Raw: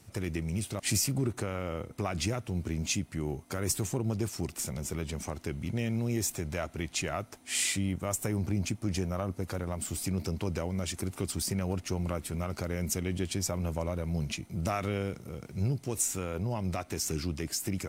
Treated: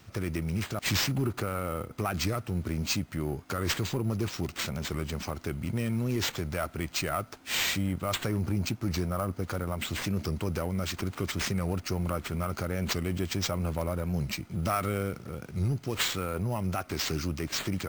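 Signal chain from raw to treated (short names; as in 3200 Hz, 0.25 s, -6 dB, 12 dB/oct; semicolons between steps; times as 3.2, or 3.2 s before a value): bell 1300 Hz +6.5 dB 0.49 oct; notch 3500 Hz; sample-rate reducer 11000 Hz, jitter 0%; in parallel at -11 dB: wavefolder -27.5 dBFS; on the sum: record warp 45 rpm, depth 100 cents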